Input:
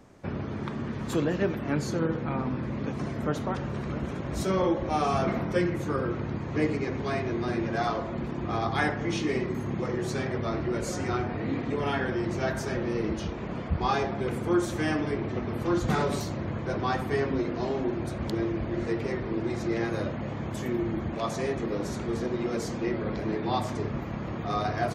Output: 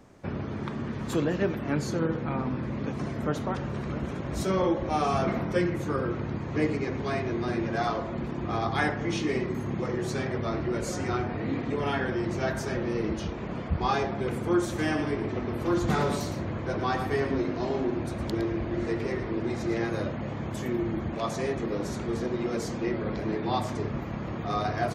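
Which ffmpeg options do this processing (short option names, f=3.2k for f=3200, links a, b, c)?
-filter_complex "[0:a]asettb=1/sr,asplit=3[a][b][c];[a]atrim=end=14.674[d];[b]atrim=start=14.67:end=19.76,asetpts=PTS-STARTPTS,afade=t=in:d=0.004:c=qsin,afade=t=out:st=5.086:d=0.004:c=qsin,aecho=1:1:112:0.335,atrim=end_sample=224469[e];[c]atrim=start=19.756[f];[d][e]acrossfade=d=0.004:c1=hsin:c2=qsin[g];[g][f]acrossfade=d=0.004:c1=qsin:c2=hsin"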